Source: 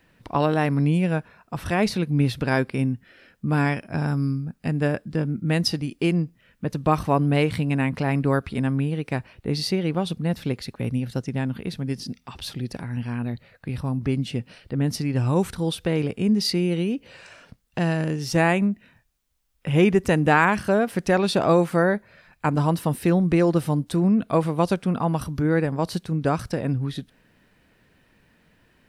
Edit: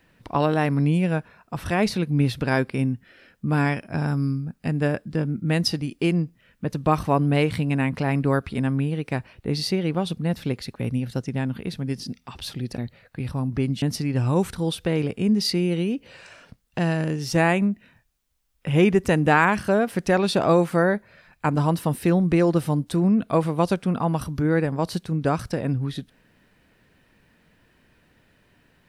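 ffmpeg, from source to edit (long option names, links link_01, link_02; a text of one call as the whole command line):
ffmpeg -i in.wav -filter_complex "[0:a]asplit=3[link_01][link_02][link_03];[link_01]atrim=end=12.782[link_04];[link_02]atrim=start=13.268:end=14.312[link_05];[link_03]atrim=start=14.818[link_06];[link_04][link_05]acrossfade=duration=0.004:curve1=hsin:curve2=hsin[link_07];[link_07][link_06]acrossfade=duration=0.004:curve1=hsin:curve2=hsin" out.wav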